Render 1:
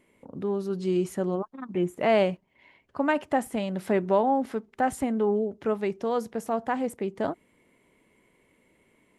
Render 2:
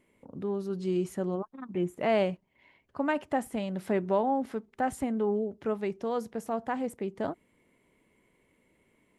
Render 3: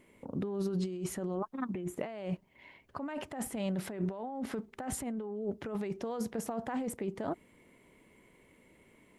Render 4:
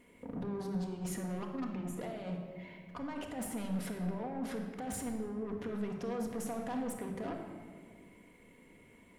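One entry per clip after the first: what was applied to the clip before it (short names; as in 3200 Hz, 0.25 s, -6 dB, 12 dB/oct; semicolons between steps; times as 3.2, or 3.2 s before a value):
low shelf 180 Hz +3.5 dB; gain -4.5 dB
negative-ratio compressor -36 dBFS, ratio -1
soft clip -36.5 dBFS, distortion -10 dB; shoebox room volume 2200 m³, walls mixed, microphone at 1.8 m; gain -1 dB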